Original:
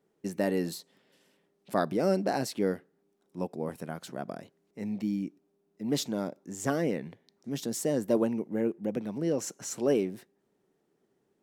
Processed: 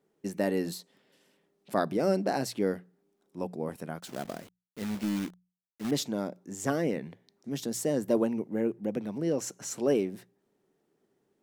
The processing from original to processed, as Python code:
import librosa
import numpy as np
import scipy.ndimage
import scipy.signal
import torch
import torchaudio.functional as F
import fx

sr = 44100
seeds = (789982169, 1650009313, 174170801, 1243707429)

y = fx.quant_companded(x, sr, bits=4, at=(4.0, 5.91))
y = fx.hum_notches(y, sr, base_hz=60, count=3)